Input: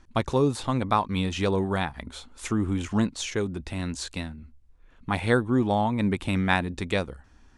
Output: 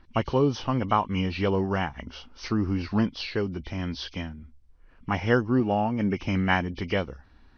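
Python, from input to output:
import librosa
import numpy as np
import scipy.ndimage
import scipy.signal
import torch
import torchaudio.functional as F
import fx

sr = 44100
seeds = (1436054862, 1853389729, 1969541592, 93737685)

y = fx.freq_compress(x, sr, knee_hz=2000.0, ratio=1.5)
y = fx.notch_comb(y, sr, f0_hz=1000.0, at=(5.6, 6.17))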